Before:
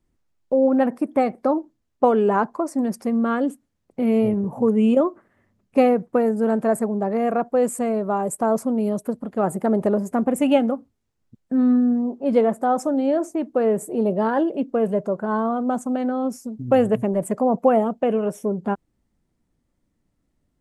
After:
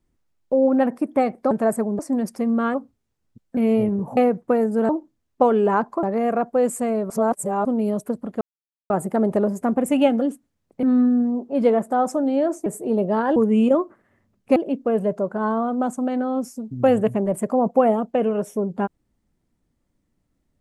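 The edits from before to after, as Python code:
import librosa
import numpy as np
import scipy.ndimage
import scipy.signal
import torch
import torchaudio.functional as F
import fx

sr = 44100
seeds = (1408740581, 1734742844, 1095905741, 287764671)

y = fx.edit(x, sr, fx.swap(start_s=1.51, length_s=1.14, other_s=6.54, other_length_s=0.48),
    fx.swap(start_s=3.4, length_s=0.62, other_s=10.71, other_length_s=0.83),
    fx.move(start_s=4.62, length_s=1.2, to_s=14.44),
    fx.reverse_span(start_s=8.09, length_s=0.55),
    fx.insert_silence(at_s=9.4, length_s=0.49),
    fx.cut(start_s=13.37, length_s=0.37), tone=tone)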